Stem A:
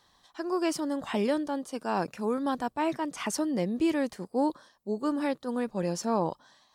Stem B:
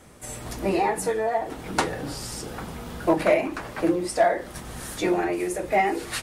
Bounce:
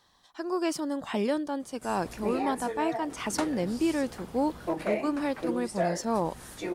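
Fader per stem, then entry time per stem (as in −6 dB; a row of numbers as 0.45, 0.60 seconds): −0.5, −10.0 decibels; 0.00, 1.60 seconds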